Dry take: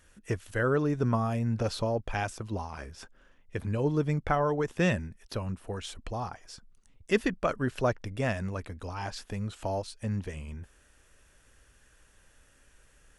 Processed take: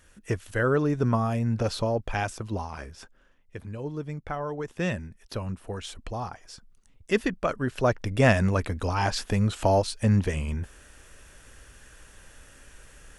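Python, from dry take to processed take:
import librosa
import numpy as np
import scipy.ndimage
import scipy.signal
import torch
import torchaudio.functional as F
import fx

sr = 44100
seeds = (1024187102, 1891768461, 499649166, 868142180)

y = fx.gain(x, sr, db=fx.line((2.73, 3.0), (3.73, -6.5), (4.24, -6.5), (5.42, 1.5), (7.72, 1.5), (8.26, 10.5)))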